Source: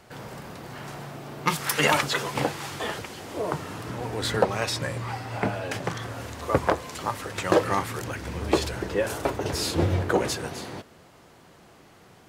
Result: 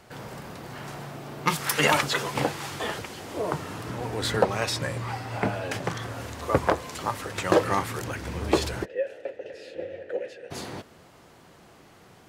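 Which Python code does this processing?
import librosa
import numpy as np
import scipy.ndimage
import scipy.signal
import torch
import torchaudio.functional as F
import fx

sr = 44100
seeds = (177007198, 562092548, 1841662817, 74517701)

y = fx.vowel_filter(x, sr, vowel='e', at=(8.84, 10.5), fade=0.02)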